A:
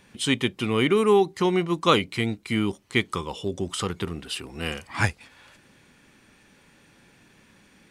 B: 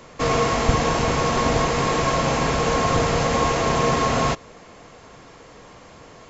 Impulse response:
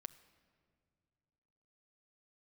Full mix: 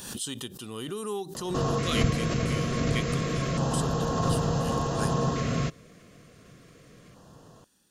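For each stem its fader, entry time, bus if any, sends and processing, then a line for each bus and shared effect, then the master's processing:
−1.5 dB, 0.00 s, no send, first-order pre-emphasis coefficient 0.8
−1.0 dB, 1.35 s, no send, parametric band 150 Hz +9.5 dB 1.5 octaves; automatic ducking −9 dB, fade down 1.75 s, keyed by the first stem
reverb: not used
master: auto-filter notch square 0.28 Hz 870–2,200 Hz; background raised ahead of every attack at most 52 dB per second

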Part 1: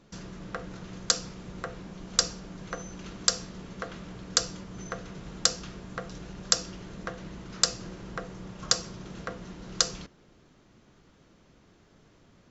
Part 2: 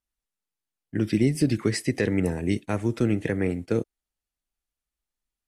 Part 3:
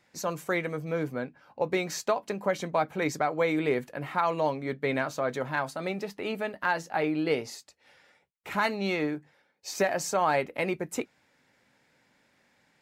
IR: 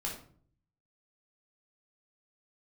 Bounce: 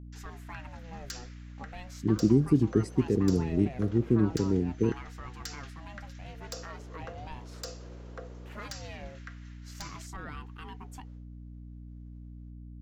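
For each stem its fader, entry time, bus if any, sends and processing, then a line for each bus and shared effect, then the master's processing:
−10.0 dB, 0.00 s, bus A, no send, auto-filter high-pass square 0.23 Hz 470–1,800 Hz; soft clipping −18 dBFS, distortion −6 dB
−0.5 dB, 1.10 s, no bus, no send, adaptive Wiener filter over 25 samples; drawn EQ curve 420 Hz 0 dB, 700 Hz −29 dB, 10,000 Hz −13 dB
−12.5 dB, 0.00 s, bus A, no send, ring modulator whose carrier an LFO sweeps 430 Hz, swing 45%, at 0.38 Hz
bus A: 0.0 dB, brickwall limiter −31 dBFS, peak gain reduction 7.5 dB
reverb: not used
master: downward expander −59 dBFS; mains hum 60 Hz, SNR 13 dB

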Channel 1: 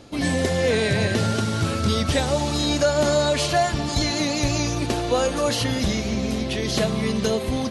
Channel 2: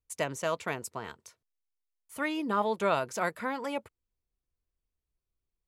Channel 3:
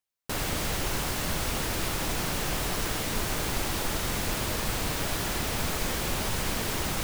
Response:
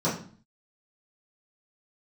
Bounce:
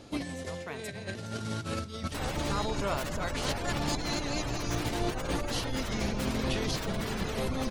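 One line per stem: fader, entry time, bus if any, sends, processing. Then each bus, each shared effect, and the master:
−8.5 dB, 0.00 s, no send, compressor whose output falls as the input rises −26 dBFS, ratio −0.5
−6.5 dB, 0.00 s, no send, volume swells 302 ms
−4.0 dB, 1.85 s, no send, gate on every frequency bin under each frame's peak −20 dB strong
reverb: not used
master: no processing

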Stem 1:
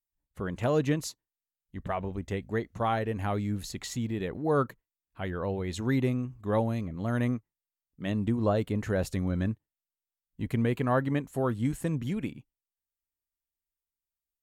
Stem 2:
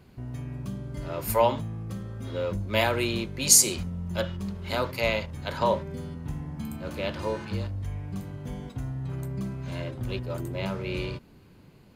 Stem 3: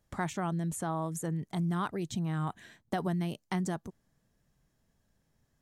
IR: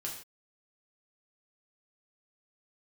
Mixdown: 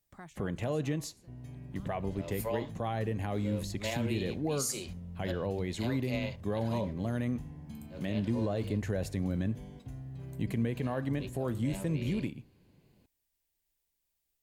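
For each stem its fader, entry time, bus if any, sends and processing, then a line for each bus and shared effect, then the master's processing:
−2.5 dB, 0.00 s, bus A, send −18 dB, multiband upward and downward compressor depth 40%
−10.0 dB, 1.10 s, bus A, no send, no processing
−12.0 dB, 0.00 s, no bus, no send, automatic ducking −16 dB, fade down 1.15 s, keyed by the first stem
bus A: 0.0 dB, parametric band 1,300 Hz −10 dB 0.45 octaves; brickwall limiter −23.5 dBFS, peak gain reduction 10 dB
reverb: on, pre-delay 3 ms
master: notch filter 920 Hz, Q 19

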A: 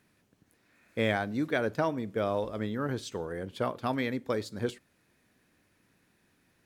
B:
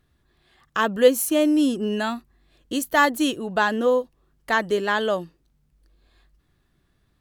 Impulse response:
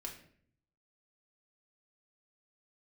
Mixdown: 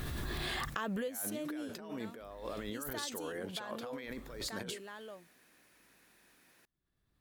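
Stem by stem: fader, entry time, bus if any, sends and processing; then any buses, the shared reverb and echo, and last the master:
−1.5 dB, 0.00 s, no send, high-pass filter 530 Hz 6 dB per octave; compressor whose output falls as the input rises −43 dBFS, ratio −1
−5.5 dB, 0.00 s, no send, background raised ahead of every attack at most 23 dB per second; automatic ducking −21 dB, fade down 1.95 s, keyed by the first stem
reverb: not used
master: high-shelf EQ 11,000 Hz +6.5 dB; downward compressor 6 to 1, threshold −34 dBFS, peak gain reduction 9 dB

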